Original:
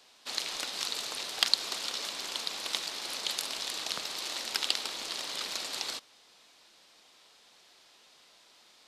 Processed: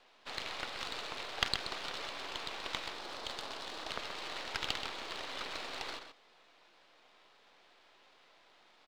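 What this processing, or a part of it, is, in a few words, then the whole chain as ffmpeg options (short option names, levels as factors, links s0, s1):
crystal radio: -filter_complex "[0:a]asettb=1/sr,asplit=3[s0][s1][s2];[s0]atrim=end=2.934[s3];[s1]atrim=start=2.93:end=3.87,asetpts=PTS-STARTPTS,afade=t=in:d=0.004:c=qsin,afade=t=out:st=0.936:d=0.004:c=qsin,equalizer=f=2300:t=o:w=1:g=-5.5[s4];[s2]atrim=start=3.866[s5];[s3][s4]acrossfade=d=0.004:c1=hsin:c2=qsin[s6];[s6][s5]acrossfade=d=0.004:c1=qsin:c2=hsin,highpass=250,lowpass=2500,aeval=exprs='if(lt(val(0),0),0.447*val(0),val(0))':c=same,asplit=2[s7][s8];[s8]adelay=128.3,volume=0.398,highshelf=f=4000:g=-2.89[s9];[s7][s9]amix=inputs=2:normalize=0,volume=1.33"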